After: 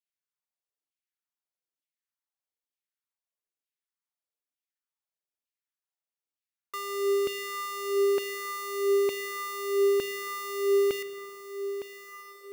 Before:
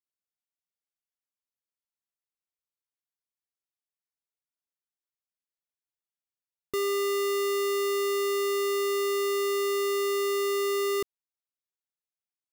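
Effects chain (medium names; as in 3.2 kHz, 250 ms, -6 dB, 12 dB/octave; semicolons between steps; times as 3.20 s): echo that smears into a reverb 1292 ms, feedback 44%, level -11 dB; LFO high-pass saw down 1.1 Hz 250–2800 Hz; spring tank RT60 2.4 s, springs 38/55 ms, chirp 25 ms, DRR 12.5 dB; trim -4.5 dB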